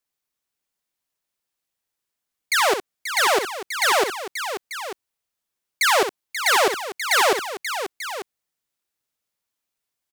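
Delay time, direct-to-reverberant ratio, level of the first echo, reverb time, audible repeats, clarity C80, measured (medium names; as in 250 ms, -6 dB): 63 ms, no reverb, -8.5 dB, no reverb, 3, no reverb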